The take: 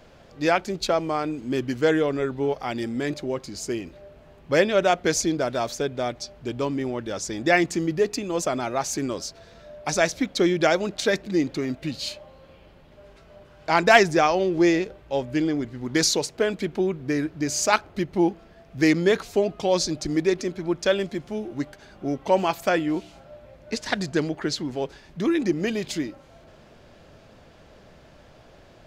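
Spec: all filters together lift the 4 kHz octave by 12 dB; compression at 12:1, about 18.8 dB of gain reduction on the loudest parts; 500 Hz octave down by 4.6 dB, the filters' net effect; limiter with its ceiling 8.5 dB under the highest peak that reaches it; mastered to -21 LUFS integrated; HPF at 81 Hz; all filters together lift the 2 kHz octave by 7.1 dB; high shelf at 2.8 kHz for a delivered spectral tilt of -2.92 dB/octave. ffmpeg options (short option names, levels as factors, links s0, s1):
-af "highpass=81,equalizer=f=500:t=o:g=-7,equalizer=f=2000:t=o:g=4.5,highshelf=f=2800:g=7,equalizer=f=4000:t=o:g=8,acompressor=threshold=0.0562:ratio=12,volume=3.35,alimiter=limit=0.376:level=0:latency=1"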